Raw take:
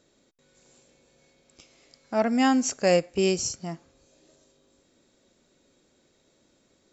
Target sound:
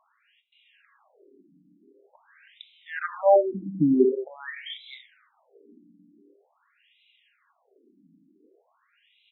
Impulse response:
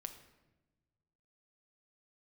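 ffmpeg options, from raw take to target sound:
-filter_complex "[0:a]asetrate=32766,aresample=44100,asplit=2[s0][s1];[1:a]atrim=start_sample=2205,afade=t=out:st=0.37:d=0.01,atrim=end_sample=16758[s2];[s1][s2]afir=irnorm=-1:irlink=0,volume=2[s3];[s0][s3]amix=inputs=2:normalize=0,afftfilt=real='re*between(b*sr/1024,220*pow(2900/220,0.5+0.5*sin(2*PI*0.46*pts/sr))/1.41,220*pow(2900/220,0.5+0.5*sin(2*PI*0.46*pts/sr))*1.41)':imag='im*between(b*sr/1024,220*pow(2900/220,0.5+0.5*sin(2*PI*0.46*pts/sr))/1.41,220*pow(2900/220,0.5+0.5*sin(2*PI*0.46*pts/sr))*1.41)':win_size=1024:overlap=0.75,volume=1.41"

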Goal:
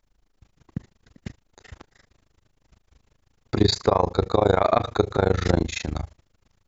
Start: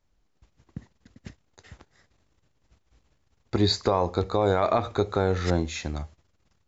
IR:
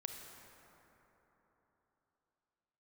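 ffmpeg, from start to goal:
-af "tremolo=f=26:d=1,volume=2.37"

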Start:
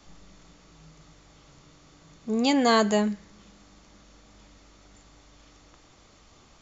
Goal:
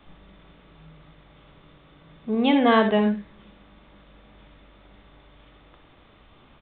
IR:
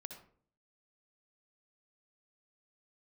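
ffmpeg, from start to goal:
-filter_complex "[0:a]aresample=8000,aresample=44100[s0];[1:a]atrim=start_sample=2205,atrim=end_sample=3528[s1];[s0][s1]afir=irnorm=-1:irlink=0,volume=2.51"

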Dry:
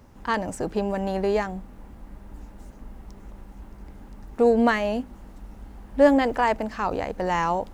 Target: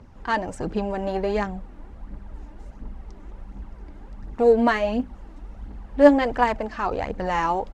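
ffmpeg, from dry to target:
-af "aresample=32000,aresample=44100,aphaser=in_gain=1:out_gain=1:delay=3.5:decay=0.47:speed=1.4:type=triangular,adynamicsmooth=sensitivity=1.5:basefreq=6400"

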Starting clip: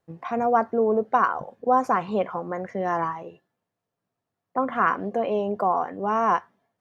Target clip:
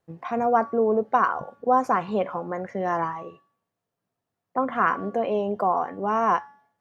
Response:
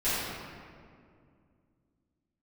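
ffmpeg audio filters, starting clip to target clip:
-af "bandreject=f=283.9:t=h:w=4,bandreject=f=567.8:t=h:w=4,bandreject=f=851.7:t=h:w=4,bandreject=f=1135.6:t=h:w=4,bandreject=f=1419.5:t=h:w=4,bandreject=f=1703.4:t=h:w=4,bandreject=f=1987.3:t=h:w=4,bandreject=f=2271.2:t=h:w=4,bandreject=f=2555.1:t=h:w=4,bandreject=f=2839:t=h:w=4,bandreject=f=3122.9:t=h:w=4,bandreject=f=3406.8:t=h:w=4,bandreject=f=3690.7:t=h:w=4,bandreject=f=3974.6:t=h:w=4,bandreject=f=4258.5:t=h:w=4,bandreject=f=4542.4:t=h:w=4,bandreject=f=4826.3:t=h:w=4,bandreject=f=5110.2:t=h:w=4,bandreject=f=5394.1:t=h:w=4,bandreject=f=5678:t=h:w=4,bandreject=f=5961.9:t=h:w=4,bandreject=f=6245.8:t=h:w=4,bandreject=f=6529.7:t=h:w=4,bandreject=f=6813.6:t=h:w=4,bandreject=f=7097.5:t=h:w=4,bandreject=f=7381.4:t=h:w=4,bandreject=f=7665.3:t=h:w=4,bandreject=f=7949.2:t=h:w=4"

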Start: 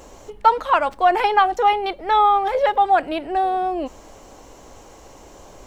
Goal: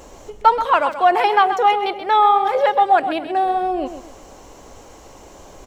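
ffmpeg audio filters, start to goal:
-filter_complex "[0:a]asettb=1/sr,asplit=3[s0][s1][s2];[s0]atrim=end=0.654[s3];[s1]atrim=start=0.65:end=3.46,asetpts=PTS-STARTPTS,afade=t=in:d=0.004:c=qsin,afade=t=out:st=2.806:d=0.004:c=qsin,highpass=110[s4];[s2]atrim=start=3.456[s5];[s3][s4]acrossfade=d=0.004:c1=hsin:c2=qsin[s6];[s6][s5]acrossfade=d=0.004:c1=qsin:c2=hsin,aecho=1:1:130|260|390:0.299|0.0866|0.0251,volume=1.19"

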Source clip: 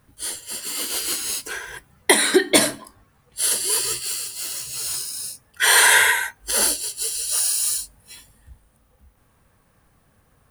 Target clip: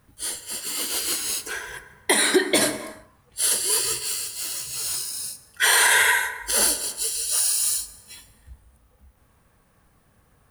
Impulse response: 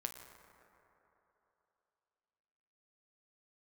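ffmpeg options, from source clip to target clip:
-filter_complex "[0:a]asplit=2[s0][s1];[1:a]atrim=start_sample=2205,afade=t=out:st=0.41:d=0.01,atrim=end_sample=18522[s2];[s1][s2]afir=irnorm=-1:irlink=0,volume=1.58[s3];[s0][s3]amix=inputs=2:normalize=0,alimiter=level_in=0.891:limit=0.891:release=50:level=0:latency=1,volume=0.473"

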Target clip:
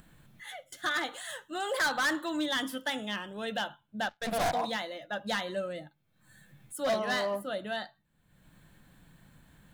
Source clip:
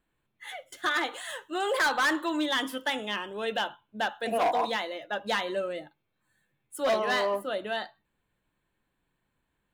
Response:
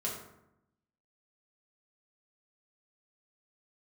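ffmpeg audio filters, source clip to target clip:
-filter_complex "[0:a]asplit=3[s0][s1][s2];[s0]afade=t=out:st=4.08:d=0.02[s3];[s1]aeval=exprs='0.0944*(cos(1*acos(clip(val(0)/0.0944,-1,1)))-cos(1*PI/2))+0.0299*(cos(2*acos(clip(val(0)/0.0944,-1,1)))-cos(2*PI/2))+0.0188*(cos(4*acos(clip(val(0)/0.0944,-1,1)))-cos(4*PI/2))+0.00335*(cos(5*acos(clip(val(0)/0.0944,-1,1)))-cos(5*PI/2))+0.015*(cos(7*acos(clip(val(0)/0.0944,-1,1)))-cos(7*PI/2))':c=same,afade=t=in:st=4.08:d=0.02,afade=t=out:st=4.53:d=0.02[s4];[s2]afade=t=in:st=4.53:d=0.02[s5];[s3][s4][s5]amix=inputs=3:normalize=0,acompressor=mode=upward:threshold=0.00891:ratio=2.5,equalizer=f=160:t=o:w=0.67:g=7,equalizer=f=400:t=o:w=0.67:g=-8,equalizer=f=1000:t=o:w=0.67:g=-6,equalizer=f=2500:t=o:w=0.67:g=-6"

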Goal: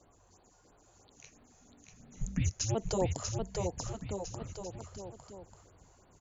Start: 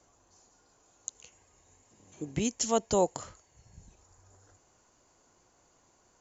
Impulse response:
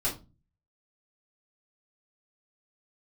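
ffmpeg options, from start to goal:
-filter_complex "[0:a]tiltshelf=f=700:g=3.5,alimiter=limit=0.0708:level=0:latency=1:release=71,asplit=3[s0][s1][s2];[s0]afade=t=out:st=1.15:d=0.02[s3];[s1]afreqshift=-330,afade=t=in:st=1.15:d=0.02,afade=t=out:st=2.74:d=0.02[s4];[s2]afade=t=in:st=2.74:d=0.02[s5];[s3][s4][s5]amix=inputs=3:normalize=0,asplit=2[s6][s7];[s7]aecho=0:1:640|1184|1646|2039|2374:0.631|0.398|0.251|0.158|0.1[s8];[s6][s8]amix=inputs=2:normalize=0,afftfilt=real='re*(1-between(b*sr/1024,220*pow(6800/220,0.5+0.5*sin(2*PI*3*pts/sr))/1.41,220*pow(6800/220,0.5+0.5*sin(2*PI*3*pts/sr))*1.41))':imag='im*(1-between(b*sr/1024,220*pow(6800/220,0.5+0.5*sin(2*PI*3*pts/sr))/1.41,220*pow(6800/220,0.5+0.5*sin(2*PI*3*pts/sr))*1.41))':win_size=1024:overlap=0.75,volume=1.26"

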